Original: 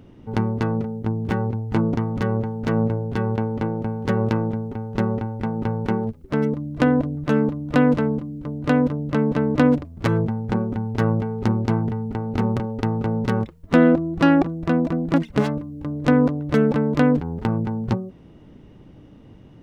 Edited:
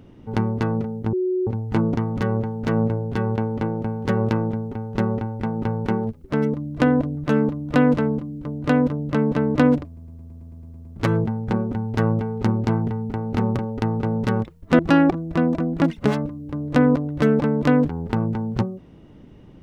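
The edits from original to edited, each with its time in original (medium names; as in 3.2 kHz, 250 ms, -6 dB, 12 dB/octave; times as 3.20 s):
1.13–1.47 s: bleep 368 Hz -19 dBFS
9.86 s: stutter 0.11 s, 10 plays
13.80–14.11 s: delete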